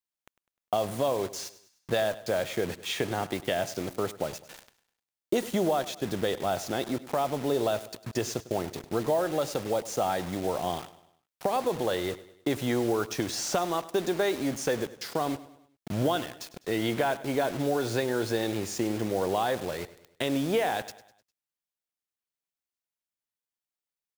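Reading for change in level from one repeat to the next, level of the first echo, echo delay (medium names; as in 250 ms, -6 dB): -6.5 dB, -17.0 dB, 101 ms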